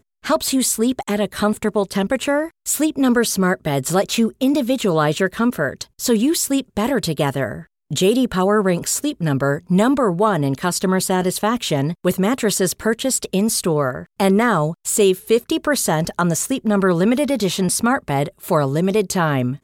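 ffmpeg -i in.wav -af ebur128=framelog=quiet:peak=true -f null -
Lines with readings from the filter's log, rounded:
Integrated loudness:
  I:         -18.8 LUFS
  Threshold: -28.8 LUFS
Loudness range:
  LRA:         1.4 LU
  Threshold: -38.8 LUFS
  LRA low:   -19.5 LUFS
  LRA high:  -18.1 LUFS
True peak:
  Peak:       -5.0 dBFS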